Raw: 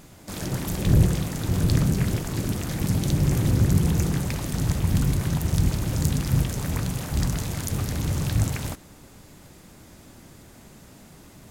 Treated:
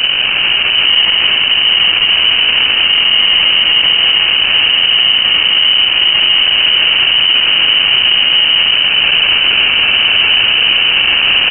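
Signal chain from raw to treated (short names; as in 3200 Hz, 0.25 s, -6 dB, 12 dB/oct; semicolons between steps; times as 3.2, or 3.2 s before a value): delta modulation 32 kbps, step -18.5 dBFS; air absorption 72 m; reverb, pre-delay 6 ms, DRR 2.5 dB; sample-rate reducer 1000 Hz, jitter 20%; echo 0.157 s -5.5 dB; AGC; inverted band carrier 3000 Hz; maximiser +10.5 dB; gain -1 dB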